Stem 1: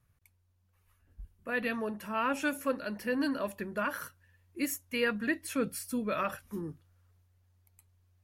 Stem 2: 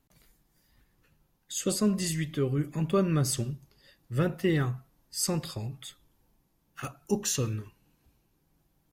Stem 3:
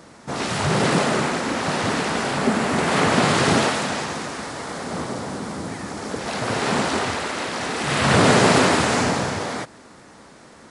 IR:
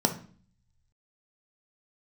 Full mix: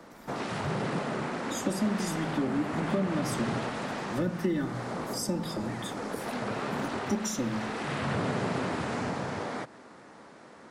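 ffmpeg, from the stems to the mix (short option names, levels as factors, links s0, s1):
-filter_complex "[0:a]adelay=400,volume=0.708[s0];[1:a]aecho=1:1:3.4:0.83,volume=0.794,asplit=3[s1][s2][s3];[s2]volume=0.355[s4];[2:a]highpass=f=220:p=1,highshelf=f=3500:g=-11.5,volume=0.75[s5];[s3]apad=whole_len=380769[s6];[s0][s6]sidechaincompress=threshold=0.00224:ratio=8:attack=16:release=390[s7];[3:a]atrim=start_sample=2205[s8];[s4][s8]afir=irnorm=-1:irlink=0[s9];[s7][s1][s5][s9]amix=inputs=4:normalize=0,acrossover=split=170|340[s10][s11][s12];[s10]acompressor=threshold=0.0251:ratio=4[s13];[s11]acompressor=threshold=0.01:ratio=4[s14];[s12]acompressor=threshold=0.02:ratio=4[s15];[s13][s14][s15]amix=inputs=3:normalize=0"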